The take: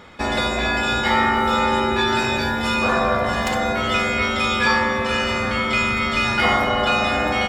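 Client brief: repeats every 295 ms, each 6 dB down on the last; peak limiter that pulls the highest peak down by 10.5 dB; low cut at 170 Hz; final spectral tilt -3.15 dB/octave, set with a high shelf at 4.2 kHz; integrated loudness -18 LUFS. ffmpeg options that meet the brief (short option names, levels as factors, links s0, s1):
-af "highpass=170,highshelf=f=4200:g=3,alimiter=limit=0.168:level=0:latency=1,aecho=1:1:295|590|885|1180|1475|1770:0.501|0.251|0.125|0.0626|0.0313|0.0157,volume=1.58"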